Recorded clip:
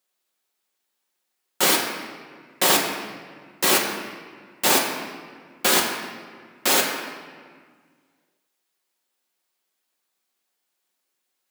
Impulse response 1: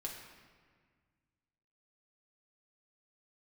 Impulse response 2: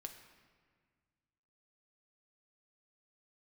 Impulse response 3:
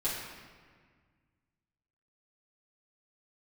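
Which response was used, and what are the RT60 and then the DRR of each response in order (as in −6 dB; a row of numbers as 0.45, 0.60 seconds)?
1; 1.7, 1.7, 1.7 seconds; −1.5, 4.5, −9.5 decibels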